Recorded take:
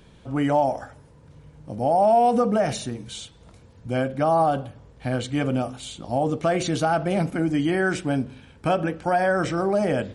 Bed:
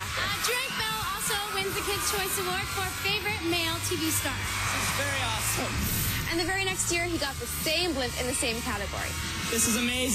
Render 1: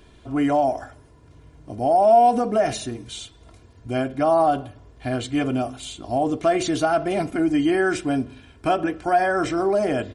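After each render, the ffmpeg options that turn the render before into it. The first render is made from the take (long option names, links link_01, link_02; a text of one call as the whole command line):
ffmpeg -i in.wav -af "aecho=1:1:2.9:0.62" out.wav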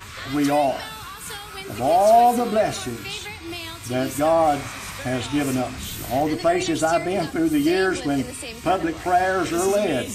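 ffmpeg -i in.wav -i bed.wav -filter_complex "[1:a]volume=-5.5dB[link_01];[0:a][link_01]amix=inputs=2:normalize=0" out.wav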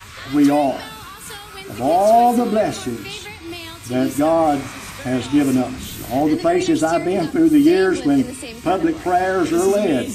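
ffmpeg -i in.wav -af "adynamicequalizer=threshold=0.0178:dfrequency=280:dqfactor=1.1:tfrequency=280:tqfactor=1.1:attack=5:release=100:ratio=0.375:range=4:mode=boostabove:tftype=bell" out.wav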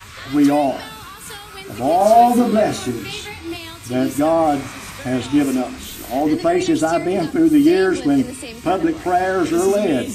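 ffmpeg -i in.wav -filter_complex "[0:a]asettb=1/sr,asplit=3[link_01][link_02][link_03];[link_01]atrim=end=1.984[link_04];[link_02]atrim=start=1.98:end=3.57,asetpts=PTS-STARTPTS,afade=type=in:duration=0.004:curve=qsin,afade=type=out:start_time=1.586:duration=0.004:curve=qsin,asplit=2[link_05][link_06];[link_06]adelay=24,volume=-2.5dB[link_07];[link_05][link_07]amix=inputs=2:normalize=0,atrim=end_sample=70119[link_08];[link_03]atrim=start=3.566[link_09];[link_04][link_08]acrossfade=duration=0.004:curve1=hsin:curve2=qsin[link_10];[link_10][link_09]acrossfade=duration=0.004:curve1=qsin:curve2=hsin,asettb=1/sr,asplit=3[link_11][link_12][link_13];[link_11]atrim=end=5.454[link_14];[link_12]atrim=start=5.45:end=6.26,asetpts=PTS-STARTPTS,afade=type=in:duration=0.004:curve=qsin,afade=type=out:start_time=0.806:duration=0.004:curve=qsin,equalizer=frequency=130:width=1.5:gain=-13[link_15];[link_13]atrim=start=6.256[link_16];[link_14][link_15]acrossfade=duration=0.004:curve1=hsin:curve2=qsin[link_17];[link_17][link_16]acrossfade=duration=0.004:curve1=qsin:curve2=hsin" out.wav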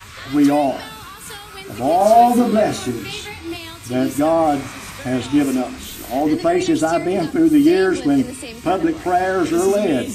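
ffmpeg -i in.wav -af anull out.wav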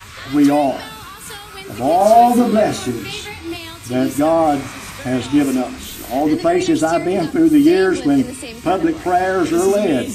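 ffmpeg -i in.wav -af "volume=1.5dB,alimiter=limit=-1dB:level=0:latency=1" out.wav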